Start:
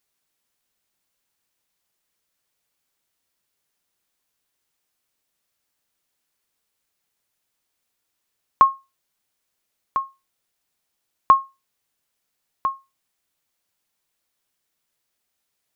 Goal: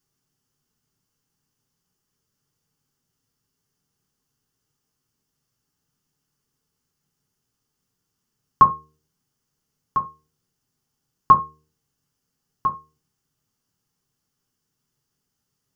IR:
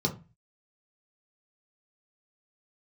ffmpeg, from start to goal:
-filter_complex "[0:a]lowshelf=f=130:g=9.5,bandreject=f=76.85:t=h:w=4,bandreject=f=153.7:t=h:w=4,bandreject=f=230.55:t=h:w=4,bandreject=f=307.4:t=h:w=4,bandreject=f=384.25:t=h:w=4,bandreject=f=461.1:t=h:w=4,asplit=2[a][b];[1:a]atrim=start_sample=2205,atrim=end_sample=4410[c];[b][c]afir=irnorm=-1:irlink=0,volume=-7dB[d];[a][d]amix=inputs=2:normalize=0,volume=-1.5dB"

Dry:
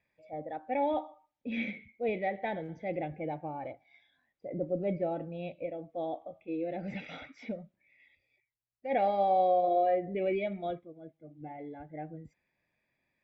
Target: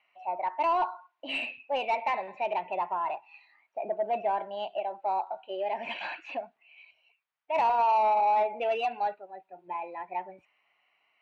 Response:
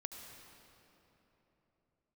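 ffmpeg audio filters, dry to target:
-filter_complex "[0:a]acrossover=split=590 3100:gain=0.112 1 0.224[a][b][c];[a][b][c]amix=inputs=3:normalize=0,asplit=2[d][e];[e]highpass=f=720:p=1,volume=19dB,asoftclip=type=tanh:threshold=-17.5dB[f];[d][f]amix=inputs=2:normalize=0,lowpass=f=1k:p=1,volume=-6dB,asetrate=52038,aresample=44100,asplit=2[g][h];[h]acompressor=threshold=-33dB:ratio=6,volume=-2dB[i];[g][i]amix=inputs=2:normalize=0"

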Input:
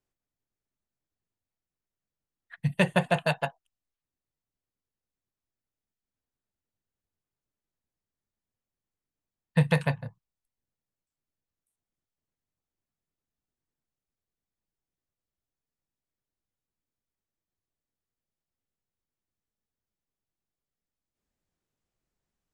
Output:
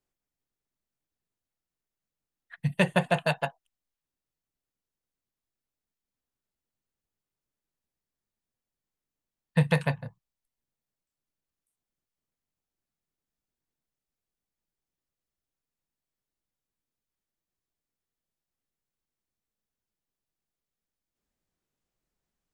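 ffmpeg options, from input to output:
-af "equalizer=f=94:t=o:w=0.43:g=-6"

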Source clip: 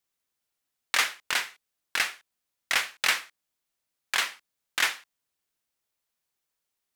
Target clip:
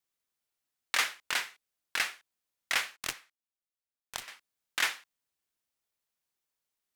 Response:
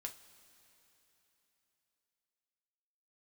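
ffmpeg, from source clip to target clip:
-filter_complex "[0:a]asettb=1/sr,asplit=3[a][b][c];[a]atrim=end=2.964[d];[b]atrim=start=2.96:end=4.28,asetpts=PTS-STARTPTS,afade=t=in:d=0.004:c=qsin,afade=t=out:st=1.316:d=0.004:c=qsin,aeval=exprs='0.335*(cos(1*acos(clip(val(0)/0.335,-1,1)))-cos(1*PI/2))+0.133*(cos(3*acos(clip(val(0)/0.335,-1,1)))-cos(3*PI/2))+0.00266*(cos(4*acos(clip(val(0)/0.335,-1,1)))-cos(4*PI/2))+0.00211*(cos(7*acos(clip(val(0)/0.335,-1,1)))-cos(7*PI/2))':c=same[e];[c]atrim=start=4.276[f];[d][e]acrossfade=d=0.004:c1=hsin:c2=qsin[g];[g][f]acrossfade=d=0.004:c1=qsin:c2=hsin,volume=-4dB"

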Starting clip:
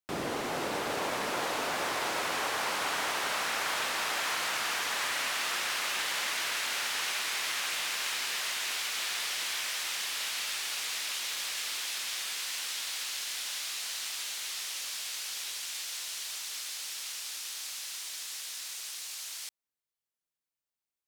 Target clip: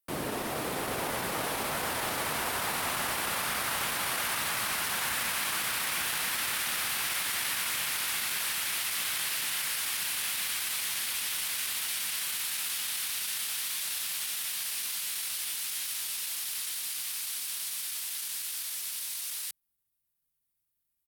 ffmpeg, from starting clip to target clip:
-af "asubboost=boost=5:cutoff=220,aexciter=amount=3:drive=6.7:freq=10k,asetrate=39289,aresample=44100,atempo=1.12246"

